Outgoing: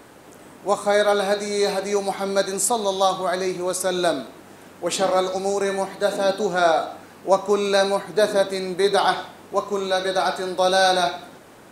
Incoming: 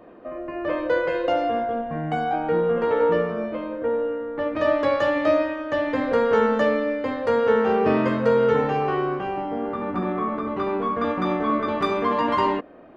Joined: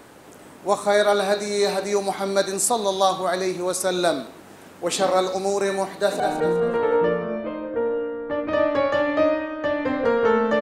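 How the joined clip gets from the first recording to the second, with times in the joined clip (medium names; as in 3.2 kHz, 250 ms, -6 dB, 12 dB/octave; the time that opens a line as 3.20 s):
outgoing
5.90–6.20 s: echo throw 200 ms, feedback 40%, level -6 dB
6.20 s: go over to incoming from 2.28 s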